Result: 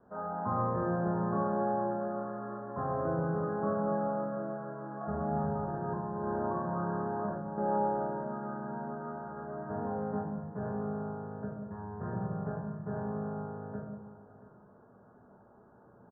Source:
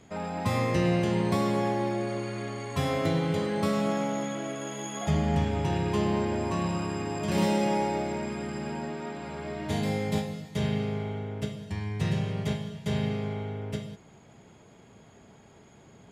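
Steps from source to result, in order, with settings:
0:05.50–0:07.58: compressor whose output falls as the input rises −29 dBFS, ratio −0.5
Butterworth low-pass 1,600 Hz 96 dB per octave
low-shelf EQ 220 Hz −11.5 dB
single-tap delay 682 ms −16.5 dB
convolution reverb RT60 0.70 s, pre-delay 4 ms, DRR 0 dB
level −4.5 dB

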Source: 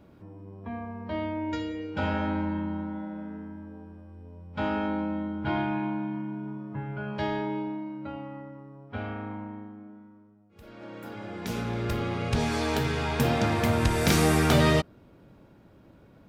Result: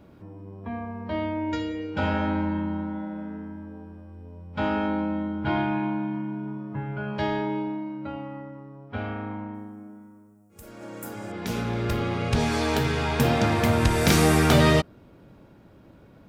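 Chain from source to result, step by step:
0:09.54–0:11.32: high shelf with overshoot 5,500 Hz +13.5 dB, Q 1.5
level +3 dB

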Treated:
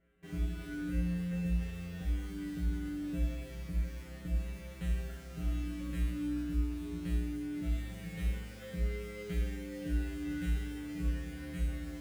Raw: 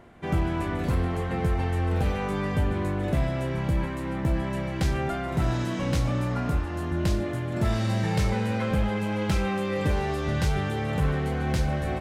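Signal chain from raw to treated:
phaser with its sweep stopped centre 2,200 Hz, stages 4
in parallel at −4 dB: bit reduction 6 bits
on the sum: tuned comb filter 59 Hz, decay 0.88 s, harmonics odd, mix 100%

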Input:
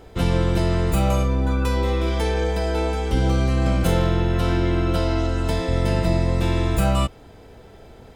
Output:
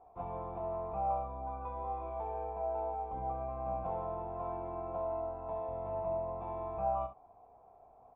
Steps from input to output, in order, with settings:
formant resonators in series a
ambience of single reflections 32 ms −11 dB, 64 ms −11.5 dB

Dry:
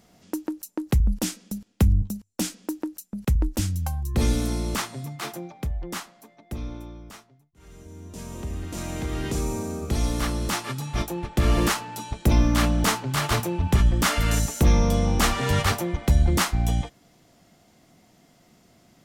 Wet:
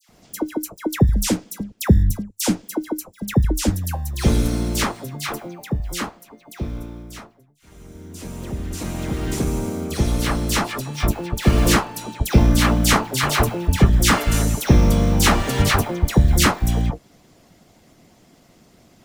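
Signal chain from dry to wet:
pitch vibrato 1.6 Hz 9.5 cents
in parallel at −10 dB: sample-rate reduction 1,800 Hz, jitter 0%
on the sum: harmonic and percussive parts rebalanced percussive +9 dB
all-pass dispersion lows, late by 92 ms, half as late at 1,600 Hz
level −1.5 dB

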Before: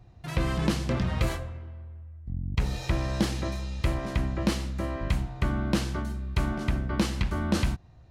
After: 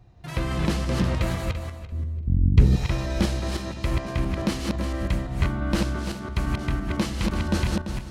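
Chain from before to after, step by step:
feedback delay that plays each chunk backwards 170 ms, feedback 42%, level −2 dB
0:01.92–0:02.76: low shelf with overshoot 510 Hz +10.5 dB, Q 1.5

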